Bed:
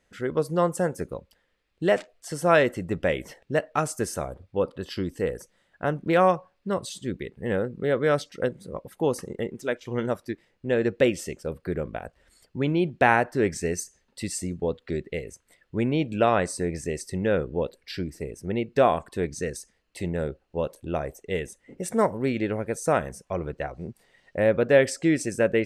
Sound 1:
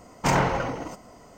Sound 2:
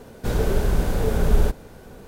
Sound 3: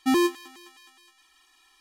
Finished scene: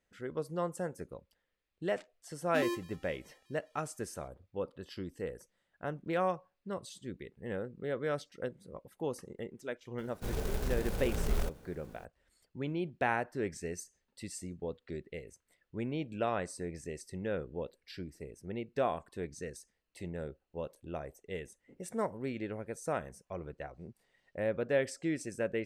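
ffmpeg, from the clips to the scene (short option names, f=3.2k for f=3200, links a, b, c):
-filter_complex "[0:a]volume=-12dB[a];[2:a]acrusher=bits=3:mode=log:mix=0:aa=0.000001[b];[3:a]atrim=end=1.8,asetpts=PTS-STARTPTS,volume=-14dB,afade=t=in:d=0.004:c=hsin,afade=t=out:st=1.796:d=0.004:c=hsin,adelay=2480[c];[b]atrim=end=2.07,asetpts=PTS-STARTPTS,volume=-14dB,afade=t=in:d=0.004:c=hsin,afade=t=out:st=2.066:d=0.004:c=hsin,adelay=9980[d];[a][c][d]amix=inputs=3:normalize=0"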